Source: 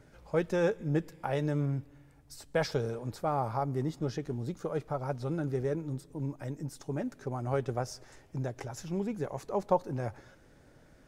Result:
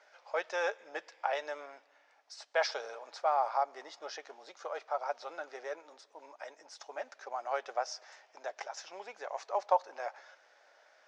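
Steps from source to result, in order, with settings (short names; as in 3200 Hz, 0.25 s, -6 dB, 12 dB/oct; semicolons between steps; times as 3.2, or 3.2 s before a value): elliptic band-pass 650–5800 Hz, stop band 60 dB; gain +3.5 dB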